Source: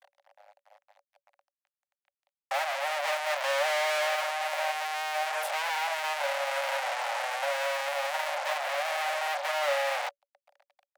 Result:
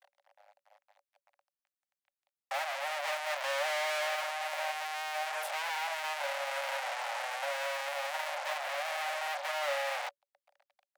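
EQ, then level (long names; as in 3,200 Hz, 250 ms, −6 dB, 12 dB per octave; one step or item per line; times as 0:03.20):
low-shelf EQ 410 Hz −6 dB
−4.0 dB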